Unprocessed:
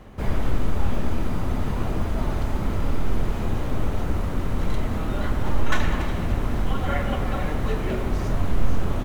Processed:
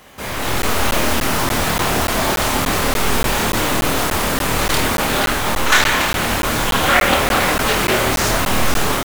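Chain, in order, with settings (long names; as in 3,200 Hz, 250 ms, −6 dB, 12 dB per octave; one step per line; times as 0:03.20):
spectral tilt +4 dB per octave
automatic gain control gain up to 10 dB
soft clipping −10.5 dBFS, distortion −21 dB
on a send: flutter between parallel walls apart 4.5 metres, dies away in 0.34 s
on the sum: regular buffer underruns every 0.29 s, samples 512, zero, from 0:00.62
highs frequency-modulated by the lows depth 0.47 ms
level +4.5 dB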